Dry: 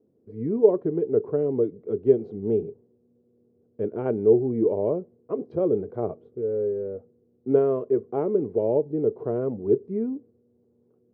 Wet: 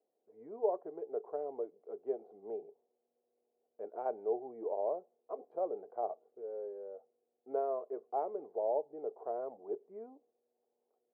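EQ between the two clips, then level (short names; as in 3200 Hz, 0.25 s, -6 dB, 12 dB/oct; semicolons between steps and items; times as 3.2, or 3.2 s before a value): ladder band-pass 810 Hz, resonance 65%; +2.0 dB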